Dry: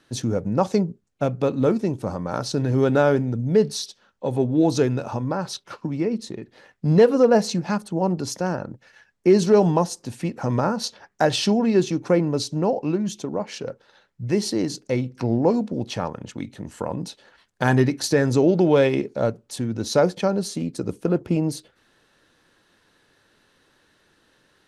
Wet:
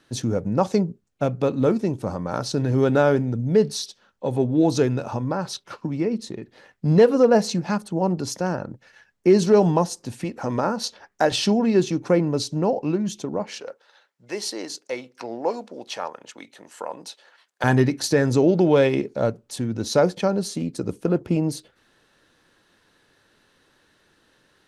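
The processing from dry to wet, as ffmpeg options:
-filter_complex "[0:a]asettb=1/sr,asplit=3[a][b][c];[a]atrim=end=10.244[d];[b]atrim=start=10.24:end=11.32,asetpts=PTS-STARTPTS,afade=t=in:d=0.004:c=qsin,afade=t=out:st=1.076:d=0.004:c=qsin,equalizer=f=140:t=o:w=0.77:g=-8.5[e];[c]atrim=start=11.316[f];[d][e]acrossfade=d=0.004:c1=hsin:c2=qsin[g];[g][f]acrossfade=d=0.004:c1=qsin:c2=hsin,asettb=1/sr,asplit=3[h][i][j];[h]atrim=end=13.604[k];[i]atrim=start=13.6:end=17.64,asetpts=PTS-STARTPTS,afade=t=in:d=0.004:c=qsin,afade=t=out:st=4.036:d=0.004:c=qsin,highpass=570[l];[j]atrim=start=17.636[m];[k][l]acrossfade=d=0.004:c1=hsin:c2=qsin[n];[n][m]acrossfade=d=0.004:c1=qsin:c2=hsin"

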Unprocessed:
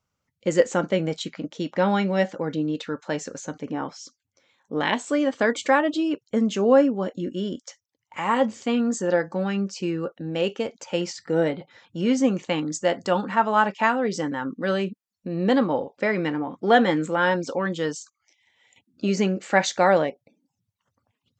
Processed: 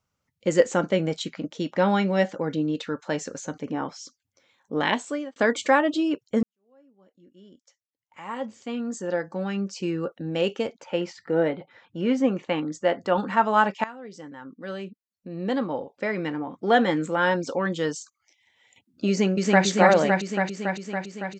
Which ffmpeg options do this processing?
-filter_complex "[0:a]asettb=1/sr,asplit=3[a][b][c];[a]atrim=end=10.734[d];[b]atrim=start=10.73:end=13.18,asetpts=PTS-STARTPTS,afade=t=in:d=0.004:c=qsin,afade=t=out:st=2.446:d=0.004:c=qsin,bass=f=250:g=-4,treble=f=4k:g=-14[e];[c]atrim=start=13.176[f];[d][e]acrossfade=d=0.004:c1=hsin:c2=qsin[g];[g][f]acrossfade=d=0.004:c1=qsin:c2=hsin,asplit=2[h][i];[i]afade=t=in:st=19.09:d=0.01,afade=t=out:st=19.65:d=0.01,aecho=0:1:280|560|840|1120|1400|1680|1960|2240|2520|2800|3080|3360:0.841395|0.631046|0.473285|0.354964|0.266223|0.199667|0.14975|0.112313|0.0842345|0.0631759|0.0473819|0.0355364[j];[h][j]amix=inputs=2:normalize=0,asplit=4[k][l][m][n];[k]atrim=end=5.36,asetpts=PTS-STARTPTS,afade=t=out:st=4.92:d=0.44[o];[l]atrim=start=5.36:end=6.43,asetpts=PTS-STARTPTS,afade=t=in:d=0.004:c=hsin,afade=t=out:st=1.066:d=0.004:c=hsin[p];[m]atrim=start=6.43:end=13.84,asetpts=PTS-STARTPTS,afade=t=in:d=3.67:c=qua,afade=t=out:st=7.406:d=0.004:c=hsin:silence=0.105925[q];[n]atrim=start=13.84,asetpts=PTS-STARTPTS,afade=t=in:d=3.86:silence=0.105925[r];[o][p][q][r]concat=n=4:v=0:a=1"

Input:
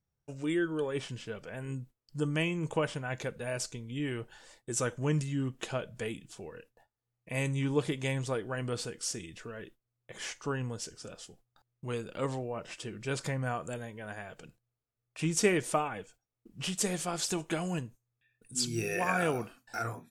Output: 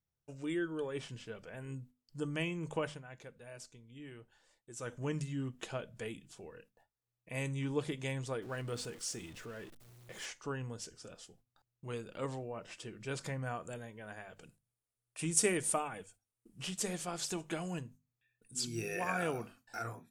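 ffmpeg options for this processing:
-filter_complex "[0:a]asettb=1/sr,asplit=3[a][b][c];[a]atrim=end=8.424[d];[b]atrim=start=8.42:end=10.26,asetpts=PTS-STARTPTS,afade=t=in:d=0.004:c=qsin,afade=t=out:st=1.836:d=0.004:c=qsin,aeval=exprs='val(0)+0.5*0.00531*sgn(val(0))':c=same[e];[c]atrim=start=10.256[f];[d][e]acrossfade=d=0.004:c1=hsin:c2=qsin[g];[g][f]acrossfade=d=0.004:c1=qsin:c2=hsin,asettb=1/sr,asplit=3[h][i][j];[h]atrim=end=14.414[k];[i]atrim=start=14.41:end=16.63,asetpts=PTS-STARTPTS,afade=t=in:d=0.004:c=qsin,afade=t=out:st=2.216:d=0.004:c=qsin,equalizer=f=9.5k:w=1.6:g=14[l];[j]atrim=start=16.626[m];[k][l]acrossfade=d=0.004:c1=hsin:c2=qsin[n];[n][m]acrossfade=d=0.004:c1=qsin:c2=hsin,asplit=3[o][p][q];[o]atrim=end=3.04,asetpts=PTS-STARTPTS,afade=t=out:st=2.86:d=0.18:silence=0.334965[r];[p]atrim=start=3.04:end=4.78,asetpts=PTS-STARTPTS,volume=-9.5dB[s];[q]atrim=start=4.78,asetpts=PTS-STARTPTS,afade=t=in:d=0.18:silence=0.334965[t];[r][s][t]concat=n=3:v=0:a=1,bandreject=f=50:t=h:w=6,bandreject=f=100:t=h:w=6,bandreject=f=150:t=h:w=6,bandreject=f=200:t=h:w=6,bandreject=f=250:t=h:w=6,volume=-5.5dB"

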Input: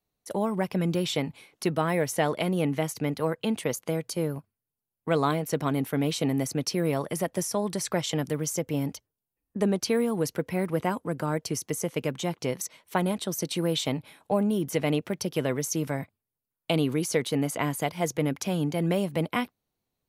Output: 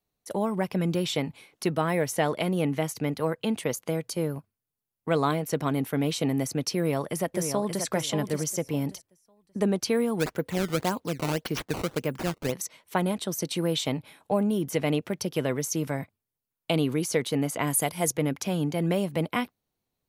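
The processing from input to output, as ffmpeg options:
-filter_complex "[0:a]asplit=2[a][b];[b]afade=t=in:st=6.76:d=0.01,afade=t=out:st=7.85:d=0.01,aecho=0:1:580|1160|1740:0.446684|0.0893367|0.0178673[c];[a][c]amix=inputs=2:normalize=0,asplit=3[d][e][f];[d]afade=t=out:st=10.19:d=0.02[g];[e]acrusher=samples=15:mix=1:aa=0.000001:lfo=1:lforange=24:lforate=1.8,afade=t=in:st=10.19:d=0.02,afade=t=out:st=12.51:d=0.02[h];[f]afade=t=in:st=12.51:d=0.02[i];[g][h][i]amix=inputs=3:normalize=0,asettb=1/sr,asplit=3[j][k][l];[j]atrim=end=17.674[m];[k]atrim=start=17.67:end=18.12,asetpts=PTS-STARTPTS,afade=t=in:d=0.004:c=qsin,afade=t=out:st=0.446:d=0.004:c=qsin,equalizer=f=10k:t=o:w=0.8:g=14.5[n];[l]atrim=start=18.116[o];[m][n]acrossfade=d=0.004:c1=hsin:c2=qsin[p];[p][o]acrossfade=d=0.004:c1=qsin:c2=hsin"

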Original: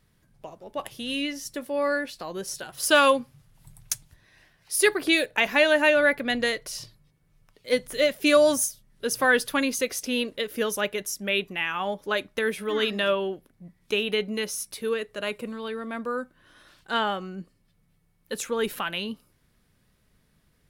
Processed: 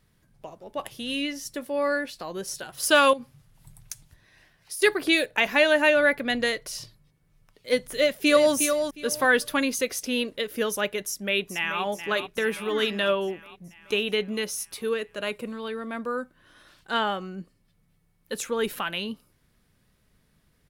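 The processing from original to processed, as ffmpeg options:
-filter_complex "[0:a]asettb=1/sr,asplit=3[a][b][c];[a]atrim=end=3.134[d];[b]atrim=start=3.13:end=4.82,asetpts=PTS-STARTPTS,afade=t=in:d=0.004:c=qsin,afade=t=out:st=1.686:d=0.004:c=qsin,acompressor=threshold=-31dB:ratio=12:attack=3.2:release=140:knee=1:detection=peak[e];[c]atrim=start=4.816[f];[d][e]acrossfade=d=0.004:c1=hsin:c2=qsin[g];[g][f]acrossfade=d=0.004:c1=qsin:c2=hsin,asplit=2[h][i];[i]afade=t=in:st=7.93:d=0.01,afade=t=out:st=8.54:d=0.01,aecho=0:1:360|720|1080:0.446684|0.0893367|0.0178673[j];[h][j]amix=inputs=2:normalize=0,asplit=2[k][l];[l]afade=t=in:st=11.04:d=0.01,afade=t=out:st=11.83:d=0.01,aecho=0:1:430|860|1290|1720|2150|2580|3010|3440|3870:0.316228|0.205548|0.133606|0.0868441|0.0564486|0.0366916|0.0238495|0.0155022|0.0100764[m];[k][m]amix=inputs=2:normalize=0"

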